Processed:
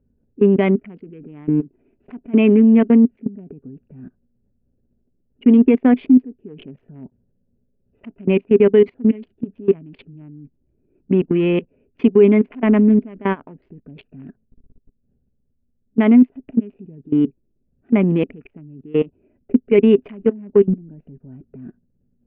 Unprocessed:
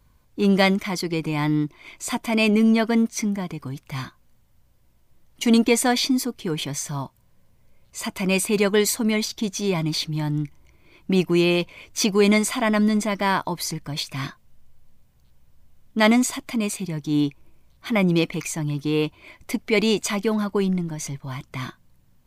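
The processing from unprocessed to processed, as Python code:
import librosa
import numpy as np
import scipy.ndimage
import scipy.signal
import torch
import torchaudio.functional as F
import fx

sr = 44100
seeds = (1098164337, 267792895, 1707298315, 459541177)

y = fx.wiener(x, sr, points=41)
y = scipy.signal.sosfilt(scipy.signal.cheby1(5, 1.0, 2900.0, 'lowpass', fs=sr, output='sos'), y)
y = fx.level_steps(y, sr, step_db=22)
y = fx.small_body(y, sr, hz=(250.0, 400.0), ring_ms=45, db=15)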